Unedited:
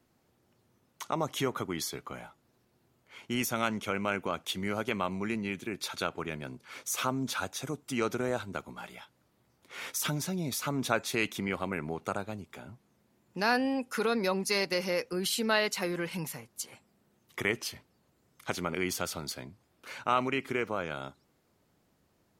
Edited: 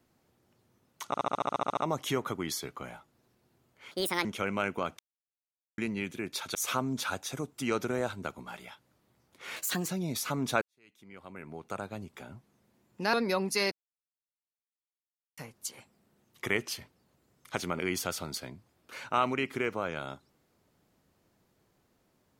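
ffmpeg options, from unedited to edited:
-filter_complex "[0:a]asplit=22[a][b][c][d][e][f][g][h][i][j][k][l][m][n][o][p][q][r][s][t][u][v];[a]atrim=end=1.142[w];[b]atrim=start=1.068:end=1.142[x];[c]atrim=start=1.068:end=1.142[y];[d]atrim=start=1.068:end=1.142[z];[e]atrim=start=1.068:end=1.142[aa];[f]atrim=start=1.068:end=1.142[ab];[g]atrim=start=1.068:end=1.142[ac];[h]atrim=start=1.068:end=1.142[ad];[i]atrim=start=1.068:end=1.142[ae];[j]atrim=start=1.068:end=1.142[af];[k]atrim=start=1.068:end=3.214[ag];[l]atrim=start=3.21:end=3.73,asetpts=PTS-STARTPTS,asetrate=67473,aresample=44100,atrim=end_sample=14988,asetpts=PTS-STARTPTS[ah];[m]atrim=start=3.726:end=4.47,asetpts=PTS-STARTPTS,afade=t=out:st=0.74:d=0.004:c=hsin[ai];[n]atrim=start=4.47:end=5.26,asetpts=PTS-STARTPTS,volume=0[aj];[o]atrim=start=5.26:end=6.032,asetpts=PTS-STARTPTS,afade=t=in:d=0.004:c=hsin[ak];[p]atrim=start=6.848:end=9.864[al];[q]atrim=start=9.86:end=10.25,asetpts=PTS-STARTPTS,asetrate=52920,aresample=44100,atrim=end_sample=14332,asetpts=PTS-STARTPTS[am];[r]atrim=start=10.246:end=10.98,asetpts=PTS-STARTPTS,afade=t=out:st=0.73:d=0.004:c=hsin[an];[s]atrim=start=10.98:end=13.502,asetpts=PTS-STARTPTS,afade=t=in:d=1.44:c=qua[ao];[t]atrim=start=14.078:end=14.66,asetpts=PTS-STARTPTS,afade=t=out:st=0.578:d=0.004:c=hsin[ap];[u]atrim=start=14.66:end=16.32,asetpts=PTS-STARTPTS,volume=0[aq];[v]atrim=start=16.32,asetpts=PTS-STARTPTS,afade=t=in:d=0.004:c=hsin[ar];[w][x]acrossfade=d=0.004:c1=hsin:c2=hsin[as];[as][y]acrossfade=d=0.004:c1=hsin:c2=hsin[at];[at][z]acrossfade=d=0.004:c1=hsin:c2=hsin[au];[au][aa]acrossfade=d=0.004:c1=hsin:c2=hsin[av];[av][ab]acrossfade=d=0.004:c1=hsin:c2=hsin[aw];[aw][ac]acrossfade=d=0.004:c1=hsin:c2=hsin[ax];[ax][ad]acrossfade=d=0.004:c1=hsin:c2=hsin[ay];[ay][ae]acrossfade=d=0.004:c1=hsin:c2=hsin[az];[az][af]acrossfade=d=0.004:c1=hsin:c2=hsin[ba];[ba][ag]acrossfade=d=0.004:c1=hsin:c2=hsin[bb];[bb][ah]acrossfade=d=0.004:c1=hsin:c2=hsin[bc];[ai][aj][ak]concat=n=3:v=0:a=1[bd];[bc][bd]acrossfade=d=0.004:c1=hsin:c2=hsin[be];[be][al]acrossfade=d=0.004:c1=hsin:c2=hsin[bf];[bf][am]acrossfade=d=0.004:c1=hsin:c2=hsin[bg];[an][ao]concat=n=2:v=0:a=1[bh];[bg][bh]acrossfade=d=0.004:c1=hsin:c2=hsin[bi];[ap][aq][ar]concat=n=3:v=0:a=1[bj];[bi][bj]acrossfade=d=0.004:c1=hsin:c2=hsin"

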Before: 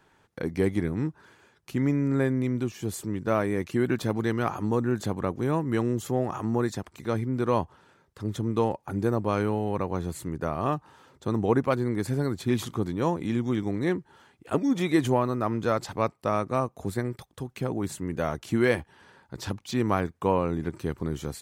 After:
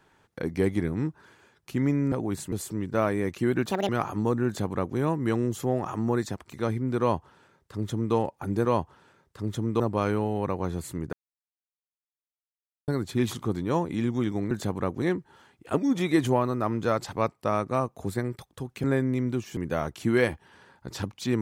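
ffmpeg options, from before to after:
-filter_complex "[0:a]asplit=13[a][b][c][d][e][f][g][h][i][j][k][l][m];[a]atrim=end=2.122[n];[b]atrim=start=17.638:end=18.042[o];[c]atrim=start=2.848:end=4.044[p];[d]atrim=start=4.04:end=4.35,asetpts=PTS-STARTPTS,asetrate=76734,aresample=44100[q];[e]atrim=start=4.346:end=9.112[r];[f]atrim=start=7.458:end=8.612[s];[g]atrim=start=9.108:end=10.44,asetpts=PTS-STARTPTS,afade=t=out:st=1.328:d=0.004:c=hsin[t];[h]atrim=start=10.44:end=12.19,asetpts=PTS-STARTPTS,volume=0[u];[i]atrim=start=12.19:end=13.822,asetpts=PTS-STARTPTS,afade=t=in:d=0.004:c=hsin[v];[j]atrim=start=4.918:end=5.432[w];[k]atrim=start=13.818:end=17.642[x];[l]atrim=start=2.118:end=2.852[y];[m]atrim=start=18.038[z];[n][o]acrossfade=d=0.004:c1=hsin:c2=hsin[aa];[aa][p]acrossfade=d=0.004:c1=hsin:c2=hsin[ab];[ab][q]acrossfade=d=0.004:c1=hsin:c2=hsin[ac];[ac][r]acrossfade=d=0.004:c1=hsin:c2=hsin[ad];[ad][s]acrossfade=d=0.004:c1=hsin:c2=hsin[ae];[t][u][v]concat=n=3:v=0:a=1[af];[ae][af]acrossfade=d=0.004:c1=hsin:c2=hsin[ag];[ag][w]acrossfade=d=0.004:c1=hsin:c2=hsin[ah];[ah][x]acrossfade=d=0.004:c1=hsin:c2=hsin[ai];[ai][y]acrossfade=d=0.004:c1=hsin:c2=hsin[aj];[aj][z]acrossfade=d=0.004:c1=hsin:c2=hsin"

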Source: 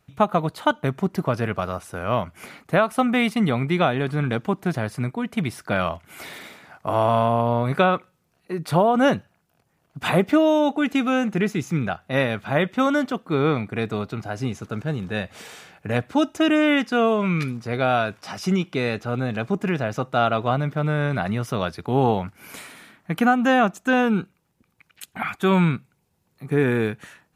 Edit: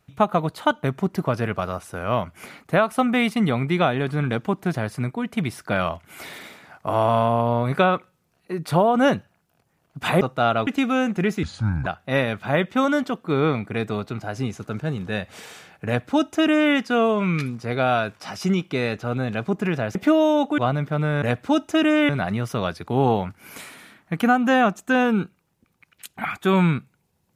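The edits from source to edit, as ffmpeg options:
-filter_complex "[0:a]asplit=9[a][b][c][d][e][f][g][h][i];[a]atrim=end=10.212[j];[b]atrim=start=19.968:end=20.432[k];[c]atrim=start=10.838:end=11.604[l];[d]atrim=start=11.6:end=11.88,asetpts=PTS-STARTPTS,asetrate=28665,aresample=44100[m];[e]atrim=start=11.876:end=19.972[n];[f]atrim=start=10.208:end=10.842[o];[g]atrim=start=20.428:end=21.072[p];[h]atrim=start=15.878:end=16.752[q];[i]atrim=start=21.068[r];[j][k]acrossfade=d=0.004:c1=hsin:c2=hsin[s];[s][l]acrossfade=d=0.004:c1=hsin:c2=hsin[t];[t][m]acrossfade=d=0.004:c1=hsin:c2=hsin[u];[u][n]acrossfade=d=0.004:c1=hsin:c2=hsin[v];[v][o]acrossfade=d=0.004:c1=hsin:c2=hsin[w];[w][p]acrossfade=d=0.004:c1=hsin:c2=hsin[x];[x][q]acrossfade=d=0.004:c1=hsin:c2=hsin[y];[y][r]acrossfade=d=0.004:c1=hsin:c2=hsin"

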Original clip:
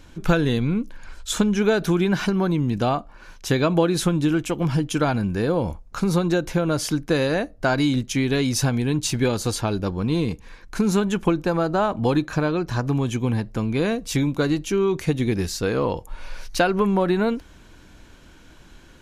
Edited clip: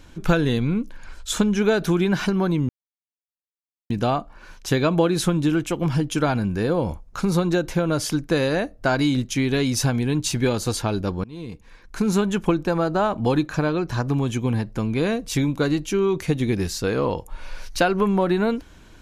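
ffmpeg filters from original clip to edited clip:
-filter_complex "[0:a]asplit=3[a][b][c];[a]atrim=end=2.69,asetpts=PTS-STARTPTS,afade=t=out:st=2.686:d=0.004:c=hsin,apad=pad_dur=1.21[d];[b]atrim=start=2.69:end=10.03,asetpts=PTS-STARTPTS,afade=t=in:d=0.004:c=hsin,afade=t=out:st=7.336:d=0.004:c=hsin:silence=0.0668344[e];[c]atrim=start=10.03,asetpts=PTS-STARTPTS,afade=t=in:d=0.9:silence=0.0668344[f];[d][e][f]concat=n=3:v=0:a=1"

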